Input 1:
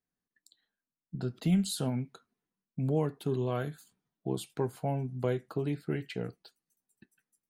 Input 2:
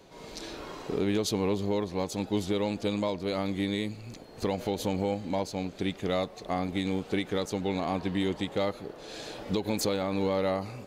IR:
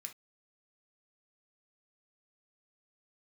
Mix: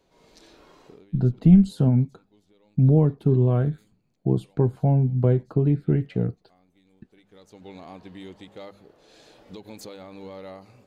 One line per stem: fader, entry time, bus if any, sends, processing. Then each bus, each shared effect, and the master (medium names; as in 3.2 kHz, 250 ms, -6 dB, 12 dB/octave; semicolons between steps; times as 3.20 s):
+2.0 dB, 0.00 s, no send, tilt EQ -4.5 dB/octave
-12.0 dB, 0.00 s, no send, de-hum 99.81 Hz, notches 2; auto duck -20 dB, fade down 0.25 s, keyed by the first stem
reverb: none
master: none